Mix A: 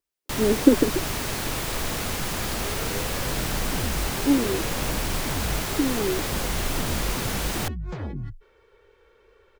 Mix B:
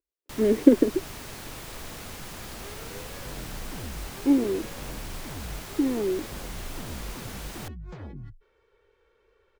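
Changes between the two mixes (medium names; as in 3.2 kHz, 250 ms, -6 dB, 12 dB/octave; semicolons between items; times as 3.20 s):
first sound -11.5 dB; second sound -8.0 dB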